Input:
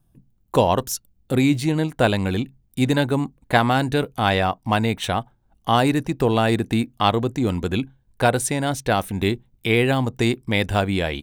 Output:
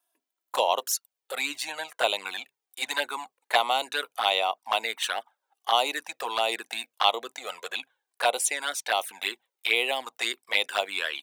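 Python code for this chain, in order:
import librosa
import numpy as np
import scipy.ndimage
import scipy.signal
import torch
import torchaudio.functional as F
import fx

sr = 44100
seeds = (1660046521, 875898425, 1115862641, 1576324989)

y = scipy.signal.sosfilt(scipy.signal.bessel(4, 900.0, 'highpass', norm='mag', fs=sr, output='sos'), x)
y = fx.env_flanger(y, sr, rest_ms=3.0, full_db=-21.0)
y = y * 10.0 ** (3.0 / 20.0)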